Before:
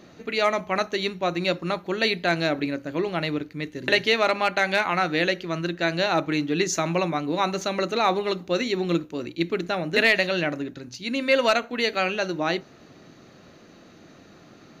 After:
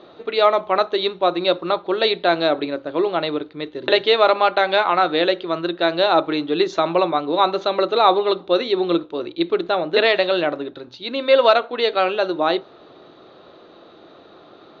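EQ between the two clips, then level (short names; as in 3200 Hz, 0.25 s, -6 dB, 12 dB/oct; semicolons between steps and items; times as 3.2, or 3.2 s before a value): ladder low-pass 3900 Hz, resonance 75%; band shelf 670 Hz +13.5 dB 2.4 oct; +6.0 dB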